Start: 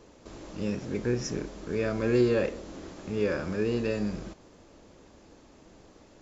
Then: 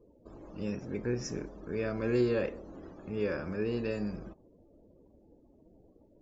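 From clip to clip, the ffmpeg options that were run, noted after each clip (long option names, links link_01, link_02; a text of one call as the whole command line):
ffmpeg -i in.wav -af "afftdn=noise_reduction=29:noise_floor=-51,volume=-4.5dB" out.wav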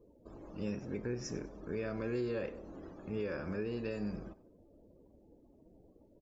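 ffmpeg -i in.wav -af "alimiter=level_in=2dB:limit=-24dB:level=0:latency=1:release=271,volume=-2dB,aecho=1:1:96|192|288:0.1|0.033|0.0109,volume=-1.5dB" out.wav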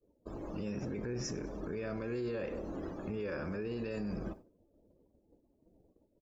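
ffmpeg -i in.wav -af "agate=range=-33dB:threshold=-51dB:ratio=3:detection=peak,alimiter=level_in=14dB:limit=-24dB:level=0:latency=1:release=43,volume=-14dB,volume=8dB" out.wav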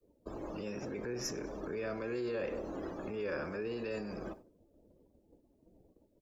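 ffmpeg -i in.wav -filter_complex "[0:a]acrossover=split=310|370|3700[link_01][link_02][link_03][link_04];[link_01]acompressor=threshold=-49dB:ratio=6[link_05];[link_04]aeval=exprs='0.0251*(cos(1*acos(clip(val(0)/0.0251,-1,1)))-cos(1*PI/2))+0.00562*(cos(2*acos(clip(val(0)/0.0251,-1,1)))-cos(2*PI/2))':channel_layout=same[link_06];[link_05][link_02][link_03][link_06]amix=inputs=4:normalize=0,volume=2.5dB" out.wav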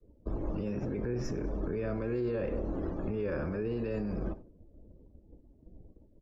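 ffmpeg -i in.wav -af "aemphasis=mode=reproduction:type=riaa" out.wav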